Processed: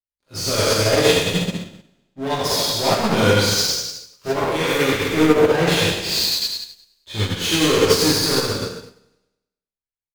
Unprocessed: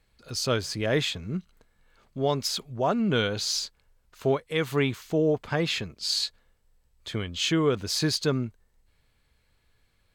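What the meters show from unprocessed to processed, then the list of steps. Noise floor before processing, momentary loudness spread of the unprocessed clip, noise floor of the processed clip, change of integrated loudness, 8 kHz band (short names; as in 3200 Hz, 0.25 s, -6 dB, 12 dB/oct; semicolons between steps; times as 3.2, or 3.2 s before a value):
-69 dBFS, 10 LU, under -85 dBFS, +9.0 dB, +11.0 dB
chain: spectral trails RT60 1.28 s; sample leveller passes 5; feedback echo 0.1 s, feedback 53%, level -11 dB; non-linear reverb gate 0.42 s falling, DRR -4 dB; upward expander 2.5:1, over -22 dBFS; gain -6 dB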